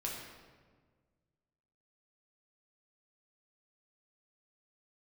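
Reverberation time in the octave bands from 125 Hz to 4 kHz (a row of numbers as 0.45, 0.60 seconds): 2.3, 1.9, 1.7, 1.4, 1.2, 1.0 seconds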